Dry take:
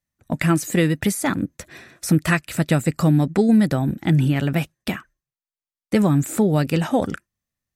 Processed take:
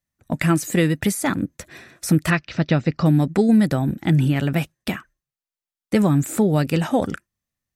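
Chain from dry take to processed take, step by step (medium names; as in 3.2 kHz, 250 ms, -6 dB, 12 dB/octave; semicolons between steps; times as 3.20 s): 2.30–3.06 s: Chebyshev low-pass 5.8 kHz, order 5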